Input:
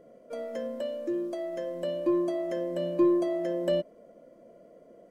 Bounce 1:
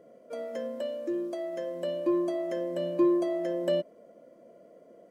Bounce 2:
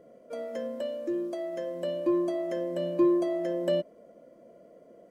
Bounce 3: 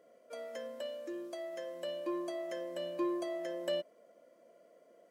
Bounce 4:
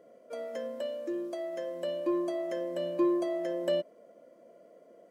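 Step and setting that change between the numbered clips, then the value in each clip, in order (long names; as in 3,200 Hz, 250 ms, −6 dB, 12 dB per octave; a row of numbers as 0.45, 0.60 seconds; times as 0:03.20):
high-pass filter, corner frequency: 150, 46, 1,300, 430 Hertz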